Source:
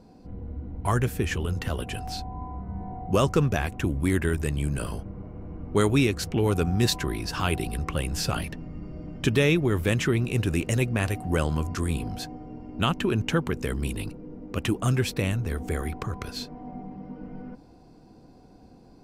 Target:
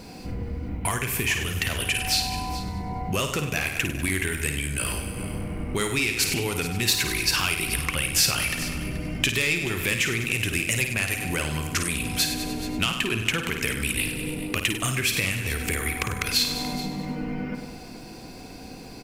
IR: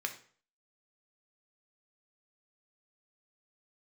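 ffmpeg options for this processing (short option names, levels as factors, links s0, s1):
-filter_complex "[0:a]equalizer=f=2300:w=1.4:g=12,asoftclip=type=tanh:threshold=0.316,asplit=2[s0][s1];[s1]aecho=0:1:98|196|294|392|490|588:0.266|0.146|0.0805|0.0443|0.0243|0.0134[s2];[s0][s2]amix=inputs=2:normalize=0,acompressor=threshold=0.0158:ratio=6,asplit=2[s3][s4];[s4]aecho=0:1:53|430:0.422|0.178[s5];[s3][s5]amix=inputs=2:normalize=0,crystalizer=i=4:c=0,volume=2.66"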